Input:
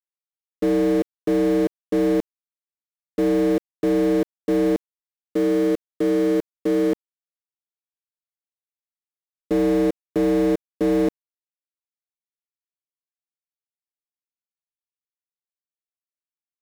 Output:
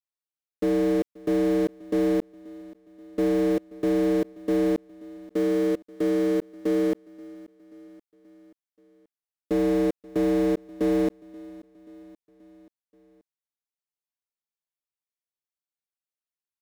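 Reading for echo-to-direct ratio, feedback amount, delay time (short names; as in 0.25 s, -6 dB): -20.0 dB, 59%, 0.531 s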